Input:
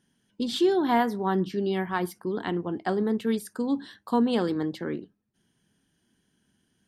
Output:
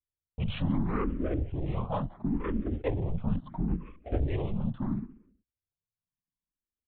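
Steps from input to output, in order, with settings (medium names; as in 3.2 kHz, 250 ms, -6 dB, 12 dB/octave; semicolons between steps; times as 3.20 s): local Wiener filter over 15 samples; gate with hold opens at -44 dBFS; compression 2.5:1, threshold -31 dBFS, peak gain reduction 9 dB; waveshaping leveller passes 2; pitch shift -8 st; on a send: feedback delay 179 ms, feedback 24%, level -21 dB; on the sum: LPC vocoder at 8 kHz whisper; barber-pole phaser +0.73 Hz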